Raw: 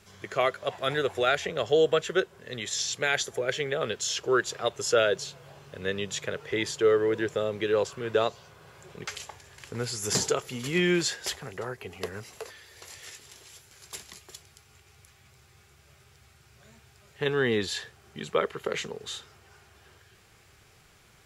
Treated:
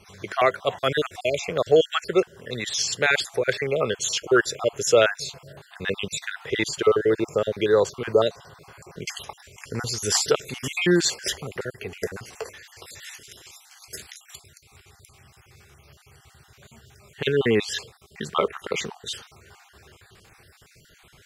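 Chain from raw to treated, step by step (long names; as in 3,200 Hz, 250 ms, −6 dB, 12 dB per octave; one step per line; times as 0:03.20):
time-frequency cells dropped at random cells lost 41%
level +6.5 dB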